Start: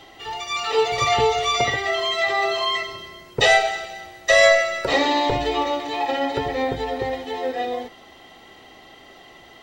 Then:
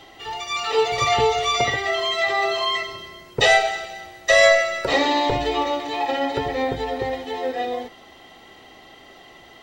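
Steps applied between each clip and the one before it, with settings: nothing audible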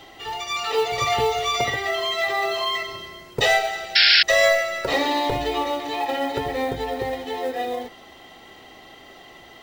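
in parallel at -1.5 dB: compressor, threshold -27 dBFS, peak gain reduction 15.5 dB; on the sum: companded quantiser 6-bit; painted sound noise, 3.95–4.23, 1400–5500 Hz -10 dBFS; gain -4.5 dB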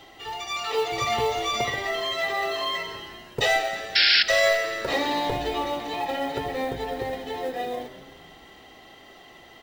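frequency-shifting echo 0.172 s, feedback 56%, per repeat -110 Hz, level -15.5 dB; gain -3.5 dB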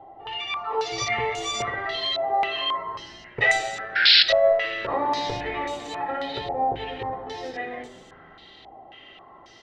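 reverb RT60 0.90 s, pre-delay 4 ms, DRR 11 dB; stepped low-pass 3.7 Hz 780–7600 Hz; gain -3.5 dB

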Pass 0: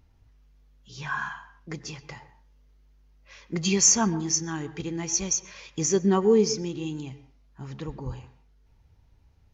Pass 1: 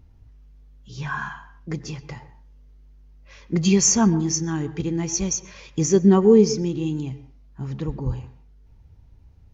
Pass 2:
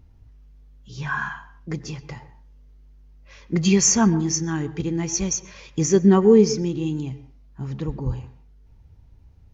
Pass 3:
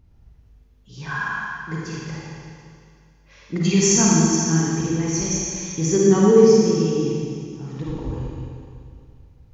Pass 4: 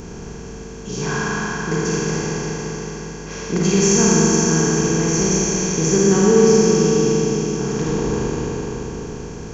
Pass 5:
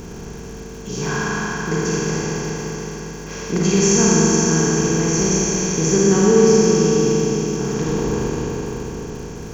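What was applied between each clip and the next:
low shelf 480 Hz +9.5 dB
dynamic EQ 1800 Hz, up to +4 dB, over -39 dBFS, Q 1.3
Schroeder reverb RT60 2.3 s, DRR -5 dB; gain -4 dB
per-bin compression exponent 0.4; gain -3 dB
crackle 400/s -37 dBFS

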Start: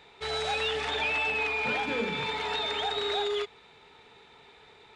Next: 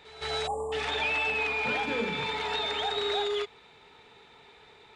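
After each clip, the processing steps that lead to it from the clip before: pre-echo 0.166 s -16.5 dB; spectral delete 0.47–0.72, 1200–7000 Hz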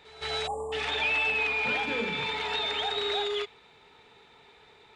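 dynamic EQ 2800 Hz, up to +4 dB, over -44 dBFS, Q 1.1; gain -1.5 dB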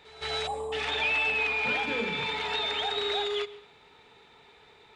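reverb RT60 0.85 s, pre-delay 0.109 s, DRR 18.5 dB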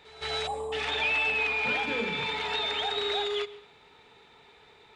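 nothing audible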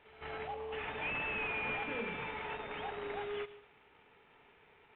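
CVSD 16 kbps; gain -7.5 dB

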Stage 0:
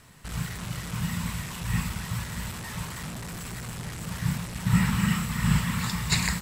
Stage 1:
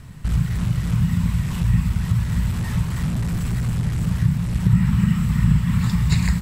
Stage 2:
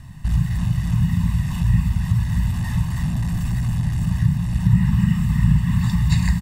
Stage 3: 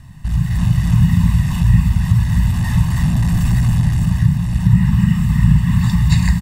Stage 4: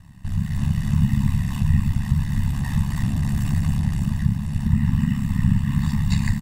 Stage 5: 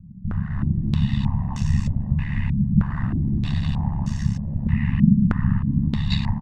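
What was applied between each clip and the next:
tone controls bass +15 dB, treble -3 dB; compressor 2.5:1, threshold -21 dBFS, peak gain reduction 12 dB; gain +3.5 dB
comb 1.1 ms, depth 79%; gain -3.5 dB
AGC gain up to 9 dB
ring modulator 35 Hz; gain -4 dB
stepped low-pass 3.2 Hz 200–6100 Hz; gain -2 dB

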